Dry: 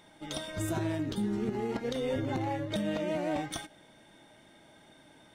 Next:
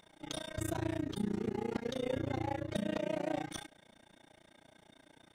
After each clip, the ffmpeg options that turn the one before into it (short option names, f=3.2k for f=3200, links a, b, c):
-af "tremolo=f=29:d=1"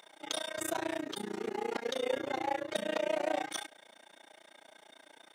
-af "highpass=490,volume=6.5dB"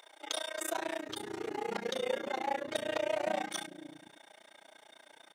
-filter_complex "[0:a]acrossover=split=290[a][b];[a]adelay=510[c];[c][b]amix=inputs=2:normalize=0"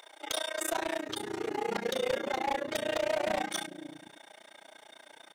-af "aeval=exprs='0.0473*(abs(mod(val(0)/0.0473+3,4)-2)-1)':c=same,volume=4dB"